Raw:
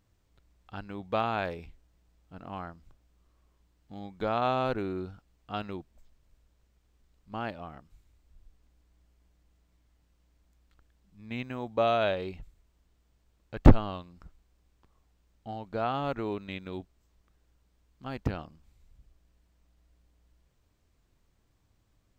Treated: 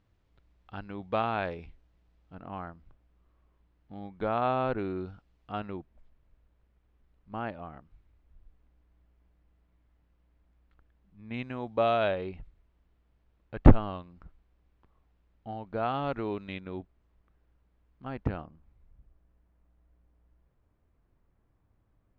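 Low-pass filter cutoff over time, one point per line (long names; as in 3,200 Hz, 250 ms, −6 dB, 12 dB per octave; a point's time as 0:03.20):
3,600 Hz
from 0:02.35 2,500 Hz
from 0:04.79 3,800 Hz
from 0:05.52 2,300 Hz
from 0:11.34 3,800 Hz
from 0:12.08 2,600 Hz
from 0:15.83 3,900 Hz
from 0:16.60 2,200 Hz
from 0:18.41 1,600 Hz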